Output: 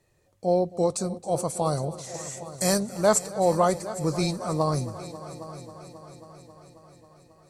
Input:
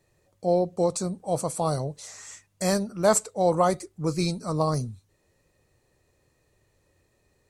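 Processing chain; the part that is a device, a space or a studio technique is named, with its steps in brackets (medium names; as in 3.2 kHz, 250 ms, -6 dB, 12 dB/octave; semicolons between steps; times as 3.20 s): 2.14–2.80 s: treble shelf 6 kHz +9 dB; multi-head tape echo (multi-head delay 270 ms, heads all three, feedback 58%, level -19 dB; wow and flutter 21 cents)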